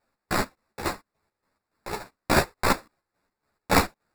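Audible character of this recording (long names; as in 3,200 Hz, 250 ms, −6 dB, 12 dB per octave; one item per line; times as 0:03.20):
aliases and images of a low sample rate 3,100 Hz, jitter 0%
chopped level 3.5 Hz, depth 65%, duty 50%
a shimmering, thickened sound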